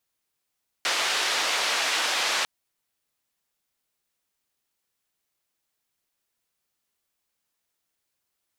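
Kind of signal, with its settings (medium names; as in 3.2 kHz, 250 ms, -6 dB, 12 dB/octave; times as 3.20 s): noise band 580–4300 Hz, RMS -25.5 dBFS 1.60 s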